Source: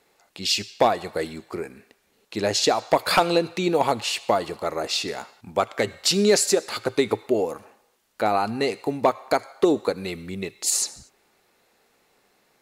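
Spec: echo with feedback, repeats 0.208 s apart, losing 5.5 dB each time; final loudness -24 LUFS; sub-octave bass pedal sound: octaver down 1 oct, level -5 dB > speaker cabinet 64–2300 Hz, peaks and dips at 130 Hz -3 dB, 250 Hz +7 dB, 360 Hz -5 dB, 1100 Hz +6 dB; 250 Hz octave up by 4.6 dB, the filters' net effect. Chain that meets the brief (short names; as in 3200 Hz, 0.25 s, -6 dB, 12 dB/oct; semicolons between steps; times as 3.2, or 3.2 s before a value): bell 250 Hz +4.5 dB; feedback echo 0.208 s, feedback 53%, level -5.5 dB; octaver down 1 oct, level -5 dB; speaker cabinet 64–2300 Hz, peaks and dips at 130 Hz -3 dB, 250 Hz +7 dB, 360 Hz -5 dB, 1100 Hz +6 dB; gain -2 dB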